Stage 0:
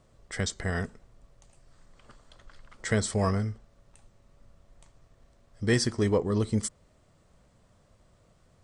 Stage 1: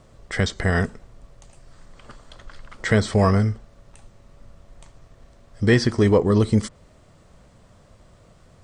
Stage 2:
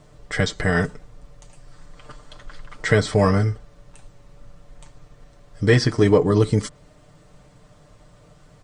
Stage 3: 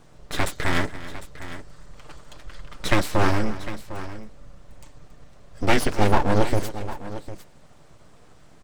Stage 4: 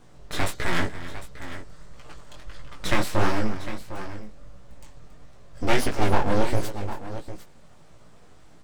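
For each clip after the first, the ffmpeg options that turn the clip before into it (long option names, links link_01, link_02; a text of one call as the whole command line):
ffmpeg -i in.wav -filter_complex "[0:a]acrossover=split=4600[link_01][link_02];[link_02]acompressor=threshold=-48dB:ratio=4:attack=1:release=60[link_03];[link_01][link_03]amix=inputs=2:normalize=0,highshelf=frequency=8700:gain=-4.5,asplit=2[link_04][link_05];[link_05]alimiter=limit=-21dB:level=0:latency=1:release=106,volume=-0.5dB[link_06];[link_04][link_06]amix=inputs=2:normalize=0,volume=4.5dB" out.wav
ffmpeg -i in.wav -af "aecho=1:1:6.7:0.65" out.wav
ffmpeg -i in.wav -af "aeval=exprs='abs(val(0))':channel_layout=same,aecho=1:1:277|753:0.168|0.2" out.wav
ffmpeg -i in.wav -filter_complex "[0:a]flanger=delay=16:depth=7.3:speed=1.5,asplit=2[link_01][link_02];[link_02]asoftclip=type=hard:threshold=-19.5dB,volume=-11.5dB[link_03];[link_01][link_03]amix=inputs=2:normalize=0" out.wav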